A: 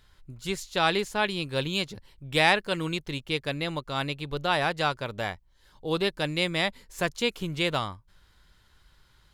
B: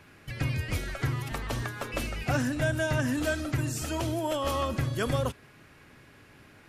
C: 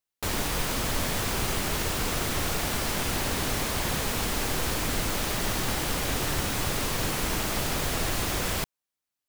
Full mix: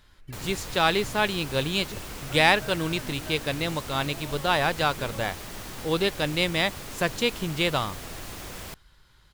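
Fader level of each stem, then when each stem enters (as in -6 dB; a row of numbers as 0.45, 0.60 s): +2.0, -14.0, -10.5 dB; 0.00, 0.00, 0.10 s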